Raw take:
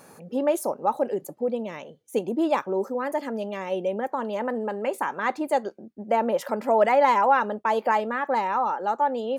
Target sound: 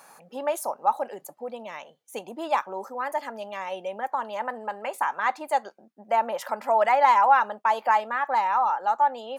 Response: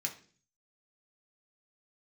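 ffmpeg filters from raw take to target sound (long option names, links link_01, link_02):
-af "highpass=160,lowshelf=frequency=570:width_type=q:width=1.5:gain=-10.5"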